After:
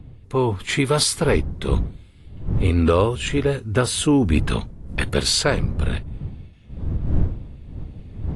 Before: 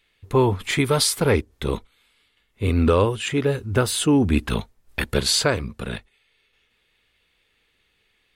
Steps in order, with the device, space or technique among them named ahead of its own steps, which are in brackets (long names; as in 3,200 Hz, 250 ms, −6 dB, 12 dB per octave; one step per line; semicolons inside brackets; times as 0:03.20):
smartphone video outdoors (wind on the microphone 100 Hz −27 dBFS; automatic gain control gain up to 6.5 dB; level −4 dB; AAC 48 kbit/s 24,000 Hz)